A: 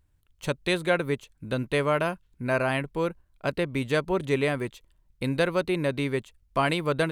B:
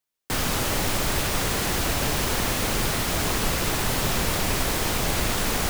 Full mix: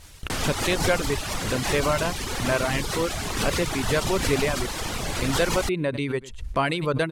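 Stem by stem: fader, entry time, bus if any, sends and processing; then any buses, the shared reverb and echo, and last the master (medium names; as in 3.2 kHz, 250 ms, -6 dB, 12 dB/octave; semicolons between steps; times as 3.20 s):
+1.0 dB, 0.00 s, no send, echo send -17 dB, gate with hold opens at -54 dBFS
-2.0 dB, 0.00 s, no send, no echo send, none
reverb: none
echo: delay 99 ms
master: reverb removal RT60 0.86 s; low-pass 10 kHz 12 dB/octave; swell ahead of each attack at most 65 dB/s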